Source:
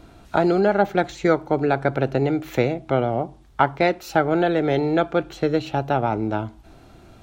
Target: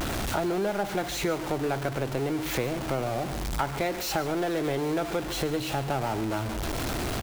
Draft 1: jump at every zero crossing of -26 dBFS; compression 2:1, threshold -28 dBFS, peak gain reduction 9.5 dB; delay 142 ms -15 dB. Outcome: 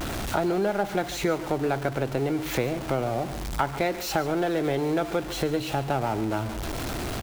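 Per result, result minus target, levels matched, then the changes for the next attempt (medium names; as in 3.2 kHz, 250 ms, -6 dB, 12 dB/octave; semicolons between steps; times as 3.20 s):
compression: peak gain reduction -4 dB; jump at every zero crossing: distortion -5 dB
change: compression 2:1, threshold -35 dBFS, peak gain reduction 13 dB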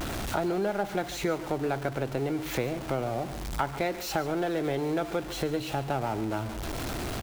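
jump at every zero crossing: distortion -5 dB
change: jump at every zero crossing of -19.5 dBFS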